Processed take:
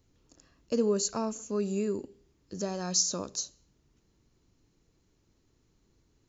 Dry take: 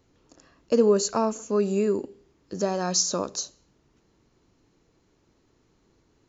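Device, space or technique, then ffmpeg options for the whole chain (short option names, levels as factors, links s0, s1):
smiley-face EQ: -af "lowshelf=f=110:g=7,equalizer=f=820:t=o:w=2.7:g=-4.5,highshelf=f=5400:g=5.5,volume=0.531"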